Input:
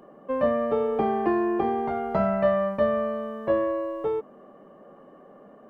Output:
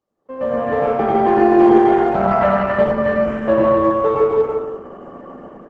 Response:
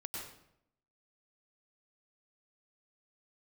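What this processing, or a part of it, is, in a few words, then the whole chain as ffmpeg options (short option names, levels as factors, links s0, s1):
speakerphone in a meeting room: -filter_complex "[0:a]asplit=3[s0][s1][s2];[s0]afade=t=out:st=3.06:d=0.02[s3];[s1]highpass=48,afade=t=in:st=3.06:d=0.02,afade=t=out:st=3.83:d=0.02[s4];[s2]afade=t=in:st=3.83:d=0.02[s5];[s3][s4][s5]amix=inputs=3:normalize=0,aecho=1:1:160|264|331.6|375.5|404.1:0.631|0.398|0.251|0.158|0.1[s6];[1:a]atrim=start_sample=2205[s7];[s6][s7]afir=irnorm=-1:irlink=0,dynaudnorm=f=110:g=11:m=5.62,agate=range=0.0562:threshold=0.00501:ratio=16:detection=peak,volume=0.891" -ar 48000 -c:a libopus -b:a 12k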